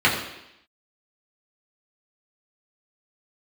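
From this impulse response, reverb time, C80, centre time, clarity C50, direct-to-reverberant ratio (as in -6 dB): 0.80 s, 7.5 dB, 36 ms, 5.5 dB, -6.0 dB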